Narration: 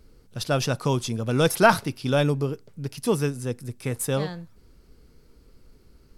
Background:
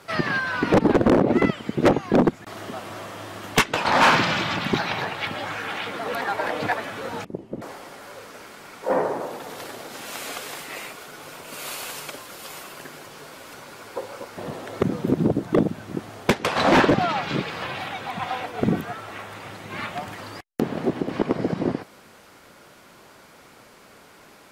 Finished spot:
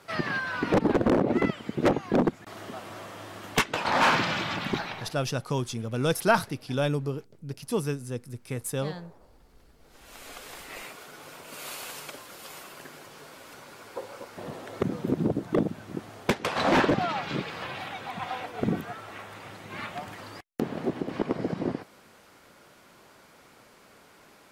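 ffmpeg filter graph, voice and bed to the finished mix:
-filter_complex "[0:a]adelay=4650,volume=-5dB[a];[1:a]volume=18.5dB,afade=t=out:st=4.69:d=0.52:silence=0.0630957,afade=t=in:st=9.78:d=1.07:silence=0.0630957[b];[a][b]amix=inputs=2:normalize=0"

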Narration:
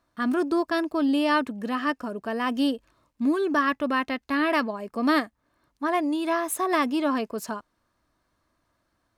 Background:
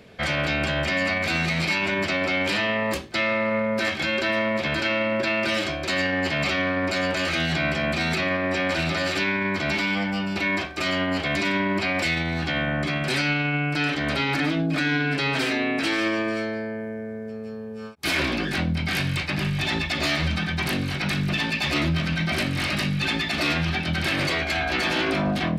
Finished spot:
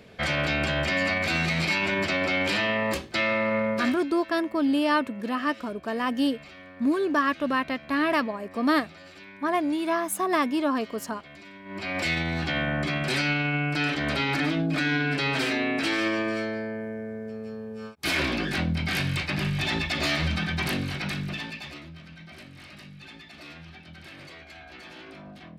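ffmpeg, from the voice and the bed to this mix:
-filter_complex "[0:a]adelay=3600,volume=-0.5dB[a];[1:a]volume=19dB,afade=t=out:st=3.69:d=0.35:silence=0.0891251,afade=t=in:st=11.64:d=0.47:silence=0.0944061,afade=t=out:st=20.66:d=1.15:silence=0.112202[b];[a][b]amix=inputs=2:normalize=0"

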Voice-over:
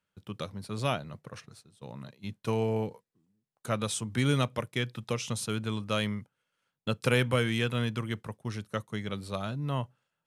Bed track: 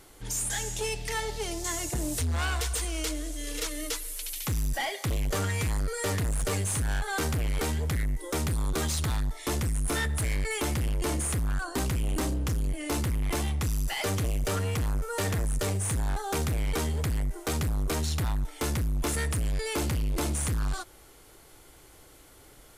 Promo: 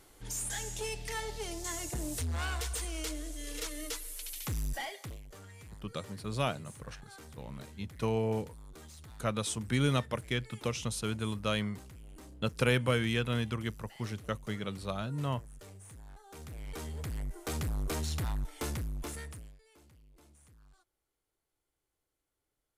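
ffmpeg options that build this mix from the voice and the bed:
-filter_complex "[0:a]adelay=5550,volume=-2dB[a];[1:a]volume=11dB,afade=t=out:st=4.71:d=0.52:silence=0.149624,afade=t=in:st=16.29:d=1.41:silence=0.141254,afade=t=out:st=18.54:d=1.04:silence=0.0446684[b];[a][b]amix=inputs=2:normalize=0"

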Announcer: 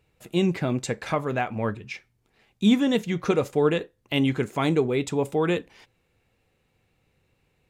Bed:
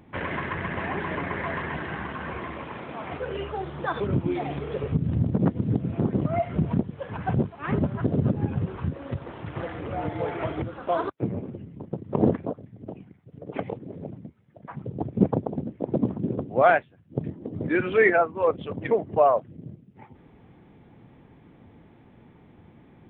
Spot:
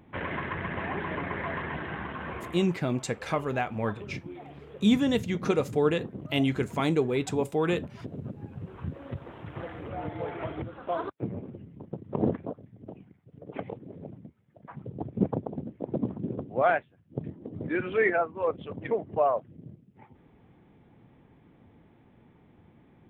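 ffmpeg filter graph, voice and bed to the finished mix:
-filter_complex "[0:a]adelay=2200,volume=-3dB[a];[1:a]volume=6.5dB,afade=t=out:st=2.34:d=0.45:silence=0.251189,afade=t=in:st=8.54:d=0.41:silence=0.334965[b];[a][b]amix=inputs=2:normalize=0"

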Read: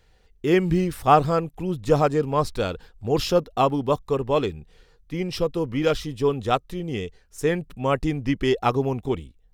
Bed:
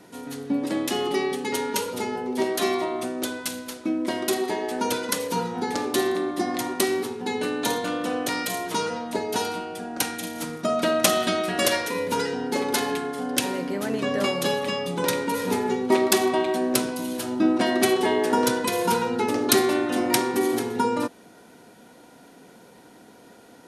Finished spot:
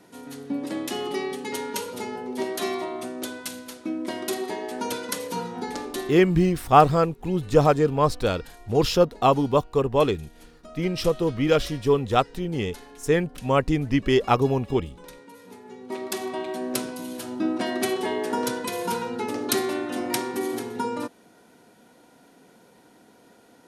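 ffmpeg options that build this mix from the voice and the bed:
-filter_complex "[0:a]adelay=5650,volume=1.5dB[a];[1:a]volume=12dB,afade=t=out:st=5.63:d=0.78:silence=0.141254,afade=t=in:st=15.63:d=1.14:silence=0.158489[b];[a][b]amix=inputs=2:normalize=0"

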